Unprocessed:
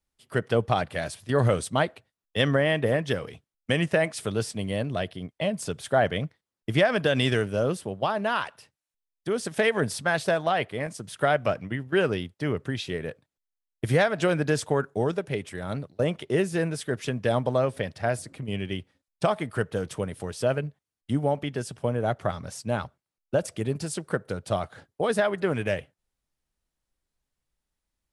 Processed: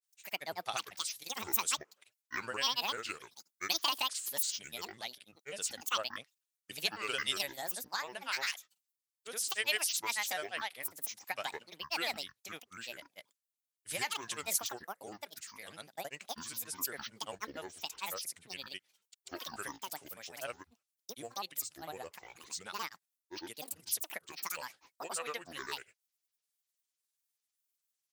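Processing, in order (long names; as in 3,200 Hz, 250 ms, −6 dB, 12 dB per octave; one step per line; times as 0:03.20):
granular cloud 100 ms, grains 20 per second, pitch spread up and down by 12 semitones
first difference
level +4.5 dB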